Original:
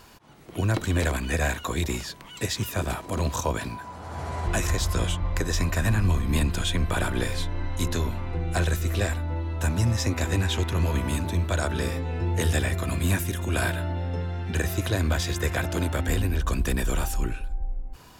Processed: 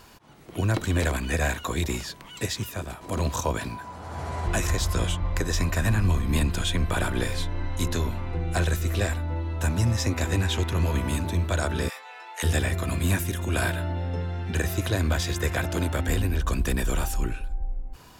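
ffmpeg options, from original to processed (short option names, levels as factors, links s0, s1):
-filter_complex "[0:a]asplit=3[s0][s1][s2];[s0]afade=t=out:st=11.88:d=0.02[s3];[s1]highpass=f=810:w=0.5412,highpass=f=810:w=1.3066,afade=t=in:st=11.88:d=0.02,afade=t=out:st=12.42:d=0.02[s4];[s2]afade=t=in:st=12.42:d=0.02[s5];[s3][s4][s5]amix=inputs=3:normalize=0,asplit=2[s6][s7];[s6]atrim=end=3.01,asetpts=PTS-STARTPTS,afade=t=out:st=2.4:d=0.61:silence=0.281838[s8];[s7]atrim=start=3.01,asetpts=PTS-STARTPTS,afade=t=in:d=0.004:c=hsin:silence=0.281838[s9];[s8][s9]concat=n=2:v=0:a=1"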